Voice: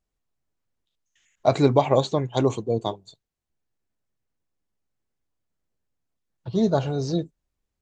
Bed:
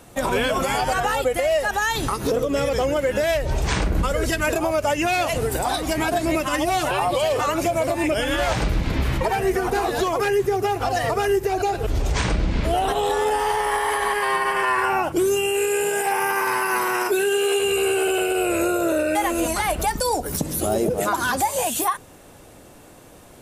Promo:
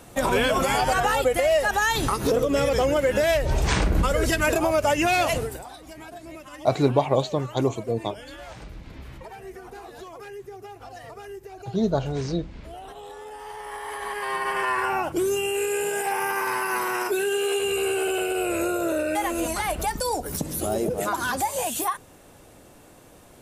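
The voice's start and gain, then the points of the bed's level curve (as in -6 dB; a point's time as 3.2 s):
5.20 s, -2.0 dB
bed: 5.33 s 0 dB
5.69 s -19 dB
13.28 s -19 dB
14.53 s -4 dB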